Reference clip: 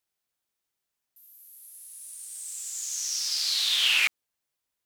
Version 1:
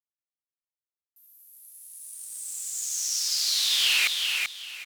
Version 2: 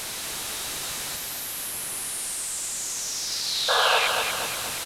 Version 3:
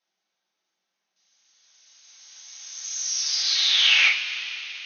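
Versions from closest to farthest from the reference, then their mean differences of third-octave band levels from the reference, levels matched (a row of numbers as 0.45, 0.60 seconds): 1, 3, 2; 2.0, 7.0, 16.0 decibels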